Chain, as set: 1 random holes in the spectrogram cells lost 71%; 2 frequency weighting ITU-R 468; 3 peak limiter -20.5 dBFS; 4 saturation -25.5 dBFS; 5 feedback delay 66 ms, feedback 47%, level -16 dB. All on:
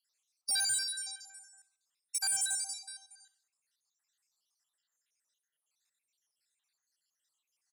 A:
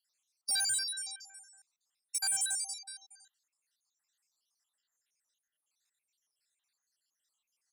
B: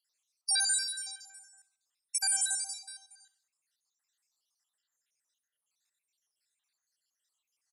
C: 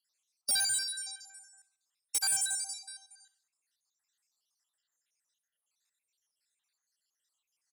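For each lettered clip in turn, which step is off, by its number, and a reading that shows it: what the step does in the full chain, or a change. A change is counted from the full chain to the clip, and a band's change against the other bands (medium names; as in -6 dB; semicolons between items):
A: 5, echo-to-direct -15.0 dB to none; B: 4, distortion -15 dB; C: 3, loudness change +1.5 LU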